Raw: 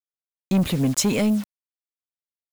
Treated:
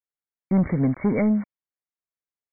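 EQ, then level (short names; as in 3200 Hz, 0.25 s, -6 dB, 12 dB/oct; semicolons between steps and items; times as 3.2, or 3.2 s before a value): brick-wall FIR low-pass 2300 Hz; 0.0 dB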